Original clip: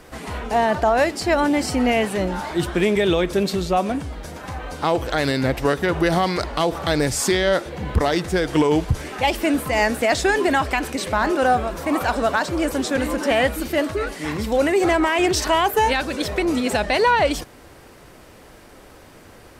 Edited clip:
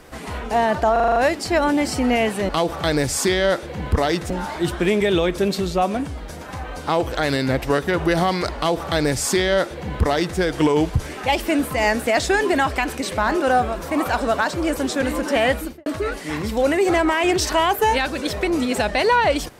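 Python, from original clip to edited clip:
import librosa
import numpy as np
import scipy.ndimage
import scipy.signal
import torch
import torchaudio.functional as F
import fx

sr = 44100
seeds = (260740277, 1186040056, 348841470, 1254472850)

y = fx.studio_fade_out(x, sr, start_s=13.51, length_s=0.3)
y = fx.edit(y, sr, fx.stutter(start_s=0.92, slice_s=0.04, count=7),
    fx.duplicate(start_s=6.52, length_s=1.81, to_s=2.25), tone=tone)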